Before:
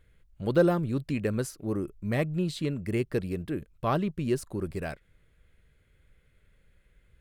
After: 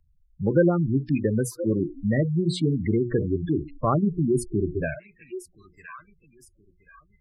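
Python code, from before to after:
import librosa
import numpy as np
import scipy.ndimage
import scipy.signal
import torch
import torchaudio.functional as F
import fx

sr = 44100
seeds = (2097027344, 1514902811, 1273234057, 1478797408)

y = fx.law_mismatch(x, sr, coded='mu', at=(2.47, 4.66))
y = fx.high_shelf(y, sr, hz=9200.0, db=7.5)
y = fx.hum_notches(y, sr, base_hz=60, count=8)
y = fx.echo_feedback(y, sr, ms=1024, feedback_pct=32, wet_db=-18)
y = fx.spec_box(y, sr, start_s=4.35, length_s=0.63, low_hz=700.0, high_hz=1400.0, gain_db=-26)
y = fx.noise_reduce_blind(y, sr, reduce_db=21)
y = fx.dynamic_eq(y, sr, hz=720.0, q=1.1, threshold_db=-37.0, ratio=4.0, max_db=-5)
y = fx.spec_gate(y, sr, threshold_db=-15, keep='strong')
y = fx.band_squash(y, sr, depth_pct=40)
y = y * librosa.db_to_amplitude(7.5)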